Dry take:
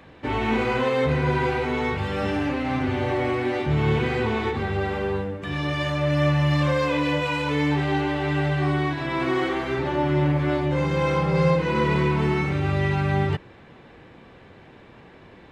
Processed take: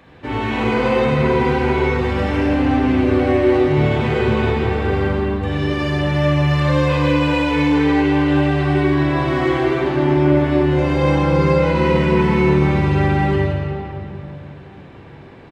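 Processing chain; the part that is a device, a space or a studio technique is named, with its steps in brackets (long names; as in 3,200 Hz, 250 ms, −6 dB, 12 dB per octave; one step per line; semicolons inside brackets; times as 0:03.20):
cave (single-tap delay 167 ms −10 dB; convolution reverb RT60 3.1 s, pre-delay 36 ms, DRR −3 dB)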